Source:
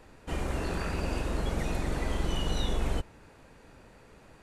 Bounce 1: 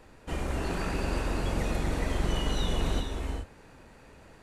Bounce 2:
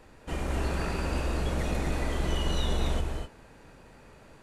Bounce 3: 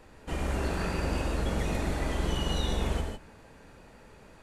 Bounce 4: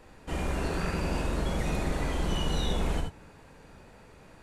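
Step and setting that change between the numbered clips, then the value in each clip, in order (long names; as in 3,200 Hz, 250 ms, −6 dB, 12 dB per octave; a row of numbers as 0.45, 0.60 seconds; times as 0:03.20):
reverb whose tail is shaped and stops, gate: 450, 280, 180, 100 milliseconds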